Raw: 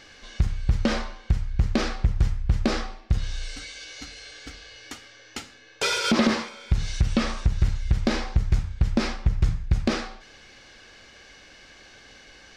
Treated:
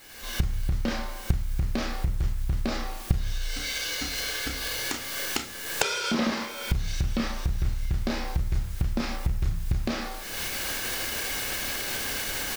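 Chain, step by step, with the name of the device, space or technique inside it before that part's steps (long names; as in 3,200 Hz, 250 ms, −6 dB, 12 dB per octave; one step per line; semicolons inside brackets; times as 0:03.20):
double-tracking delay 30 ms −3.5 dB
hum removal 51.74 Hz, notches 13
cheap recorder with automatic gain (white noise bed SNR 24 dB; camcorder AGC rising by 42 dB per second)
level −6.5 dB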